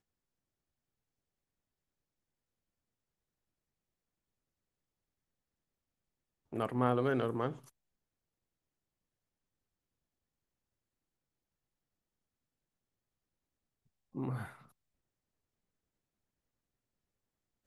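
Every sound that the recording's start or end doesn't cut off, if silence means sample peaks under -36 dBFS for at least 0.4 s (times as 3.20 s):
6.53–7.52 s
14.17–14.44 s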